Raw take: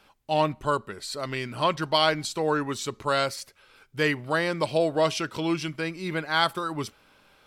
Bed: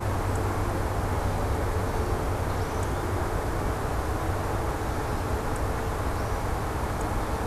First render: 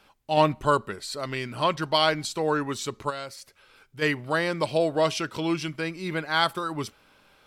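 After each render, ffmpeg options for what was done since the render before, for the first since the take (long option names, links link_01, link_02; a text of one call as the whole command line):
ffmpeg -i in.wav -filter_complex "[0:a]asplit=3[link_01][link_02][link_03];[link_01]afade=type=out:start_time=3.09:duration=0.02[link_04];[link_02]acompressor=threshold=-51dB:ratio=1.5:attack=3.2:release=140:knee=1:detection=peak,afade=type=in:start_time=3.09:duration=0.02,afade=type=out:start_time=4.01:duration=0.02[link_05];[link_03]afade=type=in:start_time=4.01:duration=0.02[link_06];[link_04][link_05][link_06]amix=inputs=3:normalize=0,asplit=3[link_07][link_08][link_09];[link_07]atrim=end=0.372[link_10];[link_08]atrim=start=0.368:end=0.962,asetpts=PTS-STARTPTS,volume=3.5dB[link_11];[link_09]atrim=start=0.958[link_12];[link_10][link_11]acrossfade=duration=0.004:curve1=hsin:curve2=hsin[link_13];[link_13][link_12]acrossfade=duration=0.004:curve1=hsin:curve2=hsin" out.wav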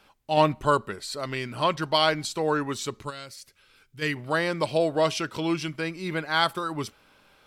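ffmpeg -i in.wav -filter_complex "[0:a]asettb=1/sr,asplit=3[link_01][link_02][link_03];[link_01]atrim=end=3.004[link_04];[link_02]atrim=start=3:end=4.16,asetpts=PTS-STARTPTS,afade=type=in:duration=0.004:curve=qsin,afade=type=out:start_time=1.156:duration=0.004:curve=qsin,equalizer=frequency=740:width_type=o:width=2:gain=-9[link_05];[link_03]atrim=start=4.156[link_06];[link_04][link_05]acrossfade=duration=0.004:curve1=hsin:curve2=qsin[link_07];[link_07][link_06]acrossfade=duration=0.004:curve1=qsin:curve2=hsin" out.wav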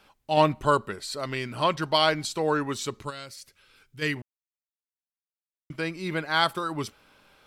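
ffmpeg -i in.wav -filter_complex "[0:a]asplit=3[link_01][link_02][link_03];[link_01]atrim=end=4.22,asetpts=PTS-STARTPTS,afade=type=out:start_time=4.216:duration=0.004:curve=hsin[link_04];[link_02]atrim=start=4.22:end=5.7,asetpts=PTS-STARTPTS,volume=0[link_05];[link_03]atrim=start=5.7,asetpts=PTS-STARTPTS,afade=type=in:duration=0.004:curve=hsin[link_06];[link_04][link_05][link_06]concat=n=3:v=0:a=1" out.wav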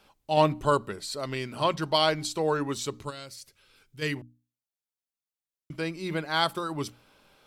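ffmpeg -i in.wav -af "equalizer=frequency=1700:width_type=o:width=1.5:gain=-4.5,bandreject=frequency=60:width_type=h:width=6,bandreject=frequency=120:width_type=h:width=6,bandreject=frequency=180:width_type=h:width=6,bandreject=frequency=240:width_type=h:width=6,bandreject=frequency=300:width_type=h:width=6" out.wav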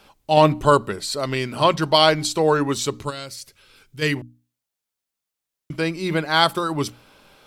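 ffmpeg -i in.wav -af "volume=8.5dB,alimiter=limit=-2dB:level=0:latency=1" out.wav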